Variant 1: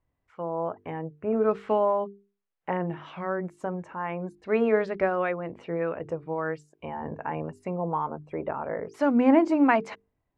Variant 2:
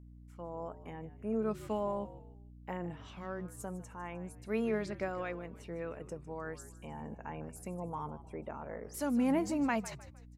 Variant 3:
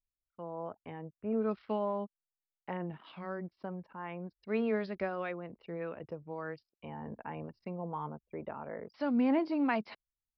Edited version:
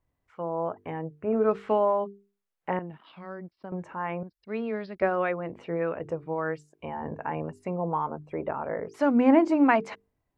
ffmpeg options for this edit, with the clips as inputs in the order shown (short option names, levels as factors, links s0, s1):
-filter_complex "[2:a]asplit=2[s0][s1];[0:a]asplit=3[s2][s3][s4];[s2]atrim=end=2.792[s5];[s0]atrim=start=2.788:end=3.722[s6];[s3]atrim=start=3.718:end=4.232[s7];[s1]atrim=start=4.228:end=5.022[s8];[s4]atrim=start=5.018[s9];[s5][s6]acrossfade=d=0.004:c1=hsin:c2=hsin[s10];[s10][s7]acrossfade=d=0.004:c1=hsin:c2=hsin[s11];[s11][s8]acrossfade=d=0.004:c1=hsin:c2=hsin[s12];[s12][s9]acrossfade=d=0.004:c1=hsin:c2=hsin"